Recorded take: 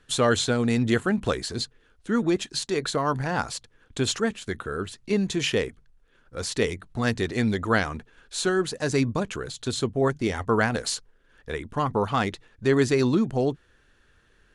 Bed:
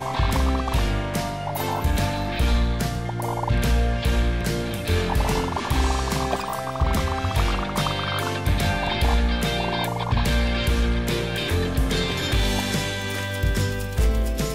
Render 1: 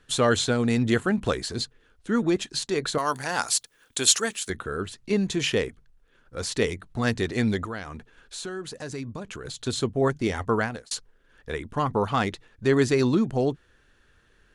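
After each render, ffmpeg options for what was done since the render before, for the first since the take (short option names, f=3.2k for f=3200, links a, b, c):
-filter_complex "[0:a]asettb=1/sr,asplit=3[a][b][c];[a]atrim=end=2.984[d];[b]atrim=start=2.98:end=4.5,asetpts=PTS-STARTPTS,afade=t=in:d=0.004:c=qsin,afade=t=out:st=1.516:d=0.004:c=qsin,aemphasis=mode=production:type=riaa[e];[c]atrim=start=4.496[f];[d][e]acrossfade=d=0.004:c1=hsin:c2=qsin[g];[g][f]acrossfade=d=0.004:c1=qsin:c2=hsin,asettb=1/sr,asplit=3[h][i][j];[h]atrim=end=7.654[k];[i]atrim=start=7.65:end=9.45,asetpts=PTS-STARTPTS,afade=t=in:d=0.004:c=qsin,afade=t=out:st=1.796:d=0.004:c=qsin,acompressor=threshold=-36dB:ratio=2.5:attack=3.2:release=140:knee=1:detection=peak[l];[j]atrim=start=9.446[m];[k][l]acrossfade=d=0.004:c1=hsin:c2=qsin[n];[n][m]acrossfade=d=0.004:c1=qsin:c2=hsin,asplit=2[o][p];[o]atrim=end=10.91,asetpts=PTS-STARTPTS,afade=t=out:st=10.47:d=0.44[q];[p]atrim=start=10.91,asetpts=PTS-STARTPTS,afade=t=in:d=0.004:c=hsin[r];[q][r]concat=n=2:v=0:a=1"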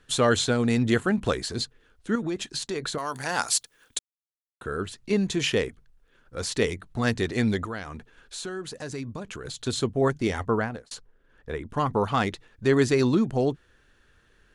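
-filter_complex "[0:a]asettb=1/sr,asplit=3[a][b][c];[a]atrim=end=2.154[d];[b]atrim=start=2.15:end=3.24,asetpts=PTS-STARTPTS,afade=t=in:d=0.004:c=qsin,afade=t=out:st=1.086:d=0.004:c=qsin,acompressor=threshold=-27dB:ratio=3:attack=3.2:release=140:knee=1:detection=peak[e];[c]atrim=start=3.236[f];[d][e]acrossfade=d=0.004:c1=hsin:c2=qsin[g];[g][f]acrossfade=d=0.004:c1=qsin:c2=hsin,asettb=1/sr,asplit=3[h][i][j];[h]atrim=end=10.474[k];[i]atrim=start=10.47:end=11.7,asetpts=PTS-STARTPTS,afade=t=in:d=0.004:c=qsin,afade=t=out:st=1.226:d=0.004:c=qsin,highshelf=f=2.2k:g=-9.5[l];[j]atrim=start=11.696[m];[k][l]acrossfade=d=0.004:c1=hsin:c2=qsin[n];[n][m]acrossfade=d=0.004:c1=qsin:c2=hsin,asplit=3[o][p][q];[o]atrim=end=3.99,asetpts=PTS-STARTPTS,afade=t=out:st=3.986:d=0.004:c=hsin[r];[p]atrim=start=3.99:end=4.61,asetpts=PTS-STARTPTS,volume=0[s];[q]atrim=start=4.61,asetpts=PTS-STARTPTS,afade=t=in:d=0.004:c=hsin[t];[r][s][t]concat=n=3:v=0:a=1"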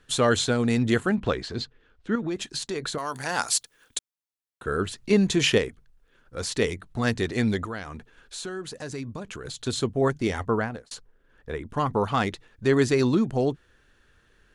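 -filter_complex "[0:a]asettb=1/sr,asplit=3[a][b][c];[a]atrim=end=1.154[d];[b]atrim=start=1.15:end=2.31,asetpts=PTS-STARTPTS,afade=t=in:d=0.004:c=qsin,afade=t=out:st=1.156:d=0.004:c=qsin,lowpass=4.1k[e];[c]atrim=start=2.306[f];[d][e]acrossfade=d=0.004:c1=hsin:c2=qsin[g];[g][f]acrossfade=d=0.004:c1=qsin:c2=hsin,asplit=3[h][i][j];[h]atrim=end=4.672[k];[i]atrim=start=4.668:end=5.582,asetpts=PTS-STARTPTS,volume=4dB[l];[j]atrim=start=5.578[m];[k][l]acrossfade=d=0.004:c1=hsin:c2=hsin[n];[n][m]acrossfade=d=0.004:c1=hsin:c2=hsin"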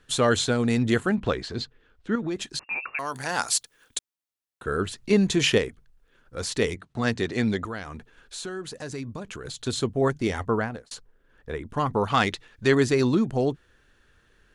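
-filter_complex "[0:a]asettb=1/sr,asplit=3[a][b][c];[a]atrim=end=2.594[d];[b]atrim=start=2.59:end=2.99,asetpts=PTS-STARTPTS,afade=t=in:d=0.004:c=qsin,afade=t=out:st=0.396:d=0.004:c=qsin,lowpass=f=2.4k:t=q:w=0.5098,lowpass=f=2.4k:t=q:w=0.6013,lowpass=f=2.4k:t=q:w=0.9,lowpass=f=2.4k:t=q:w=2.563,afreqshift=-2800[e];[c]atrim=start=2.986[f];[d][e]acrossfade=d=0.004:c1=hsin:c2=qsin[g];[g][f]acrossfade=d=0.004:c1=qsin:c2=hsin,asettb=1/sr,asplit=3[h][i][j];[h]atrim=end=6.754[k];[i]atrim=start=6.75:end=7.65,asetpts=PTS-STARTPTS,afade=t=in:d=0.004:c=qsin,afade=t=out:st=0.896:d=0.004:c=qsin,highpass=100,lowpass=7.9k[l];[j]atrim=start=7.646[m];[k][l]acrossfade=d=0.004:c1=hsin:c2=qsin[n];[n][m]acrossfade=d=0.004:c1=qsin:c2=hsin,asettb=1/sr,asplit=3[o][p][q];[o]atrim=end=12.104[r];[p]atrim=start=12.1:end=12.75,asetpts=PTS-STARTPTS,afade=t=in:d=0.004:c=qsin,afade=t=out:st=0.646:d=0.004:c=qsin,equalizer=f=3.7k:w=0.32:g=6.5[s];[q]atrim=start=12.746[t];[r][s]acrossfade=d=0.004:c1=hsin:c2=qsin[u];[u][t]acrossfade=d=0.004:c1=qsin:c2=hsin"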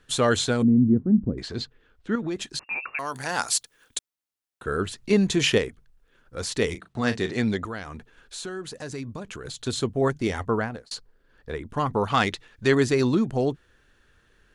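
-filter_complex "[0:a]asettb=1/sr,asplit=3[a][b][c];[a]atrim=end=0.624[d];[b]atrim=start=0.62:end=1.38,asetpts=PTS-STARTPTS,afade=t=in:d=0.004:c=qsin,afade=t=out:st=0.756:d=0.004:c=qsin,lowpass=f=240:t=q:w=2.1[e];[c]atrim=start=1.376[f];[d][e]acrossfade=d=0.004:c1=hsin:c2=qsin[g];[g][f]acrossfade=d=0.004:c1=qsin:c2=hsin,asettb=1/sr,asplit=3[h][i][j];[h]atrim=end=6.674[k];[i]atrim=start=6.67:end=7.39,asetpts=PTS-STARTPTS,afade=t=in:d=0.004:c=qsin,afade=t=out:st=0.716:d=0.004:c=qsin,asplit=2[l][m];[m]adelay=37,volume=-10.5dB[n];[l][n]amix=inputs=2:normalize=0,atrim=end_sample=31752[o];[j]atrim=start=7.386[p];[k][o]acrossfade=d=0.004:c1=hsin:c2=qsin[q];[q][p]acrossfade=d=0.004:c1=qsin:c2=hsin,asettb=1/sr,asplit=3[r][s][t];[r]atrim=end=10.824[u];[s]atrim=start=10.82:end=11.6,asetpts=PTS-STARTPTS,afade=t=in:d=0.004:c=qsin,afade=t=out:st=0.776:d=0.004:c=qsin,equalizer=f=4.5k:w=3.9:g=8.5[v];[t]atrim=start=11.596[w];[u][v]acrossfade=d=0.004:c1=hsin:c2=qsin[x];[x][w]acrossfade=d=0.004:c1=qsin:c2=hsin"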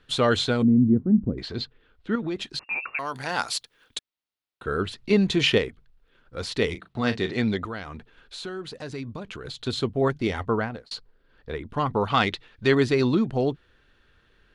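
-af "highshelf=f=5.3k:t=q:w=1.5:g=-8,bandreject=f=1.7k:w=20"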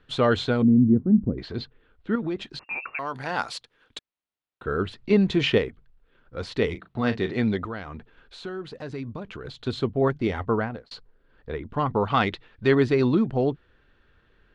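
-af "aemphasis=mode=reproduction:type=75fm"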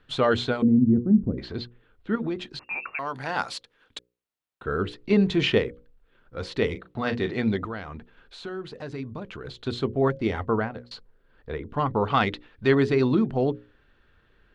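-af "bandreject=f=60:t=h:w=6,bandreject=f=120:t=h:w=6,bandreject=f=180:t=h:w=6,bandreject=f=240:t=h:w=6,bandreject=f=300:t=h:w=6,bandreject=f=360:t=h:w=6,bandreject=f=420:t=h:w=6,bandreject=f=480:t=h:w=6,bandreject=f=540:t=h:w=6"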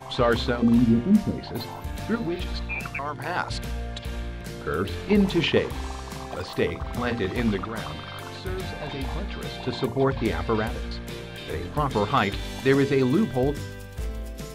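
-filter_complex "[1:a]volume=-11.5dB[a];[0:a][a]amix=inputs=2:normalize=0"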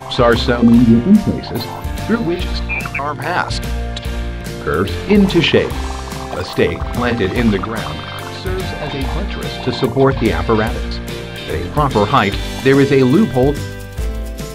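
-af "volume=10.5dB,alimiter=limit=-1dB:level=0:latency=1"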